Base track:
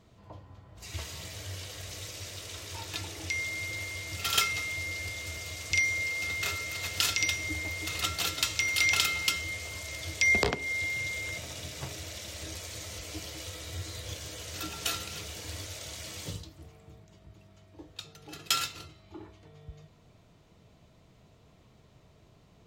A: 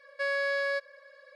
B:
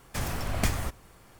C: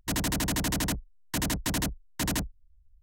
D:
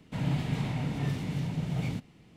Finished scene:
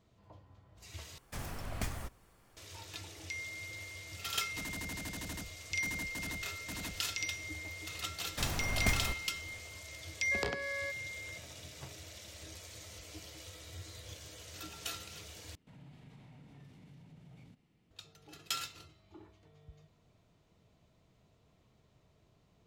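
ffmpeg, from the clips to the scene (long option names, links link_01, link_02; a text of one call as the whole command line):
ffmpeg -i bed.wav -i cue0.wav -i cue1.wav -i cue2.wav -i cue3.wav -filter_complex "[2:a]asplit=2[link_01][link_02];[0:a]volume=-9dB[link_03];[link_01]acontrast=75[link_04];[4:a]acompressor=threshold=-47dB:ratio=2:attack=9.1:release=57:knee=1:detection=peak[link_05];[link_03]asplit=3[link_06][link_07][link_08];[link_06]atrim=end=1.184[link_09];[link_04]atrim=end=1.39,asetpts=PTS-STARTPTS,volume=-17dB[link_10];[link_07]atrim=start=2.566:end=15.554[link_11];[link_05]atrim=end=2.36,asetpts=PTS-STARTPTS,volume=-15.5dB[link_12];[link_08]atrim=start=17.906[link_13];[3:a]atrim=end=3.02,asetpts=PTS-STARTPTS,volume=-15dB,afade=type=in:duration=0.004:curve=hsin,afade=type=out:start_time=3.016:duration=0.004:curve=hsin,adelay=198009S[link_14];[link_02]atrim=end=1.39,asetpts=PTS-STARTPTS,volume=-5dB,afade=type=in:duration=0.004:curve=hsin,afade=type=out:start_time=1.386:duration=0.004:curve=hsin,adelay=8230[link_15];[1:a]atrim=end=1.35,asetpts=PTS-STARTPTS,volume=-11.5dB,afade=type=in:duration=0.004:curve=hsin,afade=type=out:start_time=1.346:duration=0.004:curve=hsin,adelay=10120[link_16];[link_09][link_10]acrossfade=duration=0.004:curve1=hsin:curve2=hsin[link_17];[link_17][link_11]acrossfade=duration=0.004:curve1=hsin:curve2=hsin[link_18];[link_18][link_12]acrossfade=duration=0.004:curve1=hsin:curve2=hsin[link_19];[link_19][link_13]acrossfade=duration=0.004:curve1=hsin:curve2=hsin[link_20];[link_20][link_14][link_15][link_16]amix=inputs=4:normalize=0" out.wav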